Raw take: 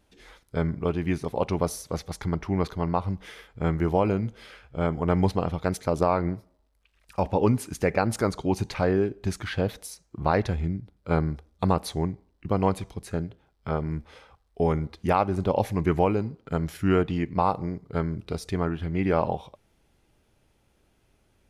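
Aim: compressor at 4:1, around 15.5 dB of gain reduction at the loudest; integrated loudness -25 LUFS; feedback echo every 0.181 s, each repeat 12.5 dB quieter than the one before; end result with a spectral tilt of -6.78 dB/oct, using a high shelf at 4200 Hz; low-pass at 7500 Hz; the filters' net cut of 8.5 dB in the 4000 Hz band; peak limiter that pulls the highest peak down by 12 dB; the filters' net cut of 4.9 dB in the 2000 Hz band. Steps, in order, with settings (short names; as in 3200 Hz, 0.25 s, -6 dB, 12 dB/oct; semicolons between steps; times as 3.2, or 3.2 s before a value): LPF 7500 Hz; bell 2000 Hz -4 dB; bell 4000 Hz -5 dB; high shelf 4200 Hz -7.5 dB; compressor 4:1, threshold -37 dBFS; limiter -32 dBFS; feedback echo 0.181 s, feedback 24%, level -12.5 dB; gain +19 dB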